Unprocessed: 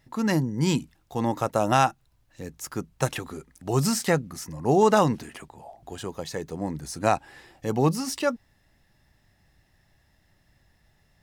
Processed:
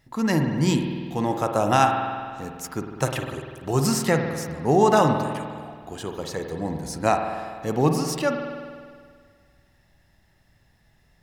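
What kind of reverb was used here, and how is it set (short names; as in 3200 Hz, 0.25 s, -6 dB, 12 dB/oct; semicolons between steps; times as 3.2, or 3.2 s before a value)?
spring tank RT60 1.9 s, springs 49 ms, chirp 30 ms, DRR 4 dB; gain +1 dB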